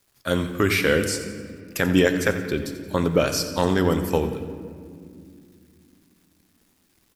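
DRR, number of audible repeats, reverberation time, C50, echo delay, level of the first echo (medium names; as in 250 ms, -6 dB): 7.0 dB, 2, 2.4 s, 8.5 dB, 88 ms, -13.0 dB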